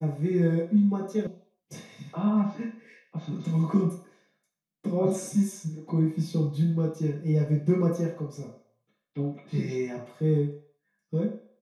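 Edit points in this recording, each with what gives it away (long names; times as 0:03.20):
0:01.27: cut off before it has died away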